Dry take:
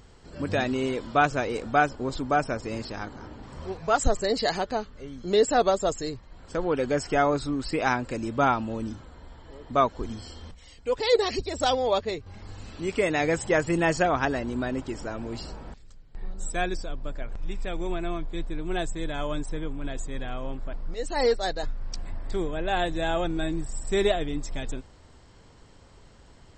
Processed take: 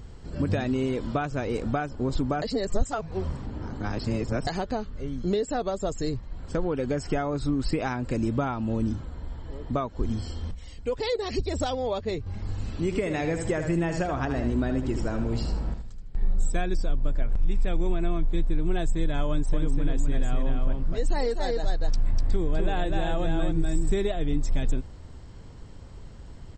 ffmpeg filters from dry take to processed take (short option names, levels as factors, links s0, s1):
-filter_complex "[0:a]asplit=3[s0][s1][s2];[s0]afade=t=out:st=12.9:d=0.02[s3];[s1]aecho=1:1:77|154|231|308:0.376|0.117|0.0361|0.0112,afade=t=in:st=12.9:d=0.02,afade=t=out:st=16.42:d=0.02[s4];[s2]afade=t=in:st=16.42:d=0.02[s5];[s3][s4][s5]amix=inputs=3:normalize=0,asettb=1/sr,asplit=3[s6][s7][s8];[s6]atrim=end=19.284[s9];[s7]atrim=start=19.28:end=23.92,asetpts=PTS-STARTPTS,afade=t=in:d=0.004:c=qsin,afade=t=out:st=4.636:d=0.004:c=qsin,aecho=1:1:248:0.631,atrim=end_sample=204624[s10];[s8]atrim=start=23.916[s11];[s9][s10]acrossfade=d=0.004:c1=hsin:c2=qsin[s12];[s12][s11]acrossfade=d=0.004:c1=qsin:c2=hsin,asplit=3[s13][s14][s15];[s13]atrim=end=2.422[s16];[s14]atrim=start=2.418:end=4.472,asetpts=PTS-STARTPTS,areverse[s17];[s15]atrim=start=4.468[s18];[s16][s17]acrossfade=d=0.004:c1=hsin:c2=hsin[s19];[s19][s18]acrossfade=d=0.004:c1=hsin:c2=hsin,acompressor=threshold=0.0398:ratio=6,lowshelf=f=290:g=11.5"